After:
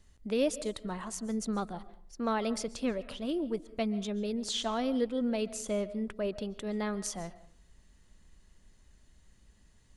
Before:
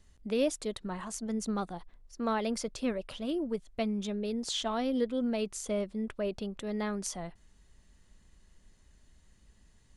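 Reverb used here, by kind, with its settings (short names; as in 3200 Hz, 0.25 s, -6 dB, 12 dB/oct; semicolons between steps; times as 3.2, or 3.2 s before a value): digital reverb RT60 0.56 s, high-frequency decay 0.45×, pre-delay 0.1 s, DRR 16.5 dB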